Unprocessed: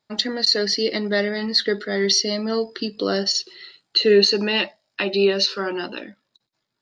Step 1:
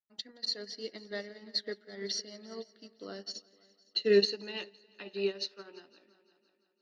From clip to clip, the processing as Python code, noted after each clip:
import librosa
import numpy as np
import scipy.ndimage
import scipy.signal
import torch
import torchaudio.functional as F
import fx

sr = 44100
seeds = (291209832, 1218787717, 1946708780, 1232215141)

y = fx.echo_heads(x, sr, ms=171, heads='all three', feedback_pct=42, wet_db=-16.0)
y = fx.upward_expand(y, sr, threshold_db=-28.0, expansion=2.5)
y = y * librosa.db_to_amplitude(-7.5)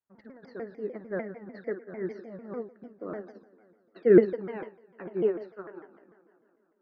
y = scipy.signal.sosfilt(scipy.signal.cheby2(4, 40, 3200.0, 'lowpass', fs=sr, output='sos'), x)
y = fx.room_flutter(y, sr, wall_m=9.2, rt60_s=0.29)
y = fx.vibrato_shape(y, sr, shape='saw_down', rate_hz=6.7, depth_cents=250.0)
y = y * librosa.db_to_amplitude(6.5)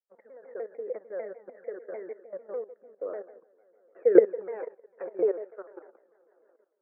y = scipy.signal.sosfilt(scipy.signal.butter(12, 2400.0, 'lowpass', fs=sr, output='sos'), x)
y = fx.level_steps(y, sr, step_db=14)
y = fx.highpass_res(y, sr, hz=510.0, q=4.9)